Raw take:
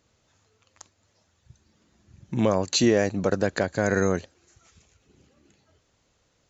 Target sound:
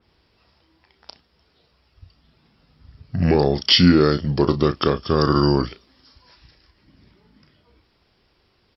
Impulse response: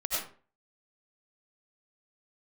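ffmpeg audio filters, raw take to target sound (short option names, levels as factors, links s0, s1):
-filter_complex "[0:a]asplit=2[s0][s1];[s1]adelay=25,volume=0.282[s2];[s0][s2]amix=inputs=2:normalize=0,asetrate=32667,aresample=44100,adynamicequalizer=threshold=0.00562:dfrequency=3200:dqfactor=0.7:tfrequency=3200:tqfactor=0.7:attack=5:release=100:ratio=0.375:range=3:mode=boostabove:tftype=highshelf,volume=1.78"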